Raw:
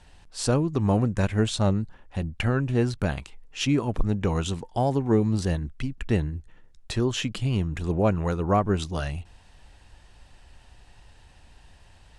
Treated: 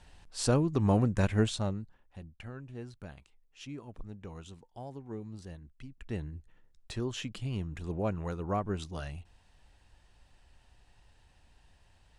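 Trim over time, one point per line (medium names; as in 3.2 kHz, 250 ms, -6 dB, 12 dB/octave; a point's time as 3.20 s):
1.42 s -3.5 dB
1.69 s -11 dB
2.39 s -20 dB
5.65 s -20 dB
6.36 s -10 dB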